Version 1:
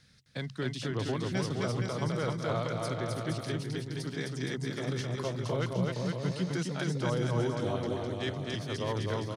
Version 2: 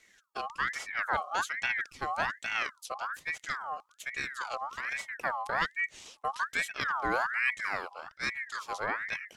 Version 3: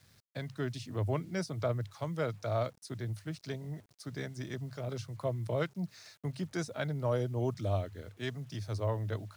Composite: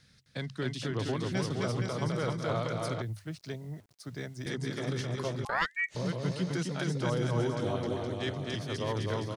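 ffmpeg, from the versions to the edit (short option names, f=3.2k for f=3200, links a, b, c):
-filter_complex "[0:a]asplit=3[a][b][c];[a]atrim=end=3.022[d];[2:a]atrim=start=3.018:end=4.462[e];[b]atrim=start=4.458:end=5.452[f];[1:a]atrim=start=5.448:end=5.952[g];[c]atrim=start=5.948[h];[d][e]acrossfade=d=0.004:c1=hsin:c2=hsin[i];[i][f]acrossfade=d=0.004:c1=hsin:c2=hsin[j];[j][g]acrossfade=d=0.004:c1=hsin:c2=hsin[k];[k][h]acrossfade=d=0.004:c1=hsin:c2=hsin"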